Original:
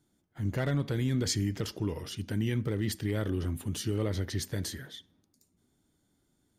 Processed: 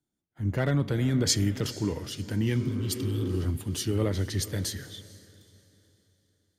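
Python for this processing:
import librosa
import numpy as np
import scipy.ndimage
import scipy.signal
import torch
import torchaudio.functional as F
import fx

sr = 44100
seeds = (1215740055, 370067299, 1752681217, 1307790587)

y = fx.spec_repair(x, sr, seeds[0], start_s=2.63, length_s=0.71, low_hz=200.0, high_hz=2600.0, source='both')
y = fx.echo_diffused(y, sr, ms=470, feedback_pct=50, wet_db=-14)
y = fx.band_widen(y, sr, depth_pct=40)
y = F.gain(torch.from_numpy(y), 3.5).numpy()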